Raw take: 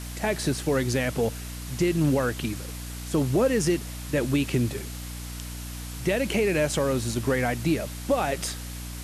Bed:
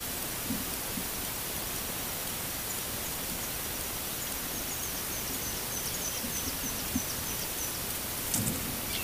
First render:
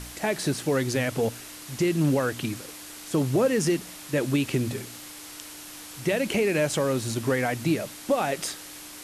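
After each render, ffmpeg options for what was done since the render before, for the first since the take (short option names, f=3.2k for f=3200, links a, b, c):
-af "bandreject=f=60:t=h:w=4,bandreject=f=120:t=h:w=4,bandreject=f=180:t=h:w=4,bandreject=f=240:t=h:w=4"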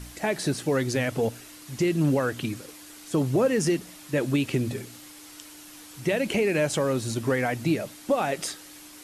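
-af "afftdn=nr=6:nf=-43"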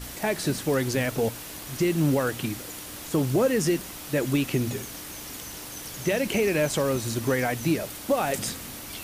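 -filter_complex "[1:a]volume=-5dB[a];[0:a][a]amix=inputs=2:normalize=0"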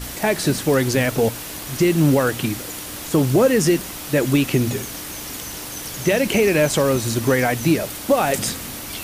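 -af "volume=7dB"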